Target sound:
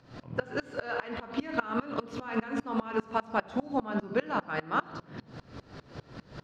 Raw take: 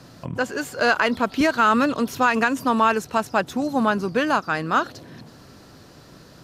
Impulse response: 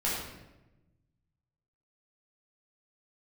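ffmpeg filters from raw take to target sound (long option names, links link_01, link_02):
-filter_complex "[0:a]acompressor=threshold=-19dB:ratio=6,lowpass=3600,acompressor=mode=upward:threshold=-30dB:ratio=2.5,asplit=2[link_01][link_02];[1:a]atrim=start_sample=2205[link_03];[link_02][link_03]afir=irnorm=-1:irlink=0,volume=-11.5dB[link_04];[link_01][link_04]amix=inputs=2:normalize=0,aeval=exprs='val(0)*pow(10,-26*if(lt(mod(-5*n/s,1),2*abs(-5)/1000),1-mod(-5*n/s,1)/(2*abs(-5)/1000),(mod(-5*n/s,1)-2*abs(-5)/1000)/(1-2*abs(-5)/1000))/20)':channel_layout=same,volume=-2.5dB"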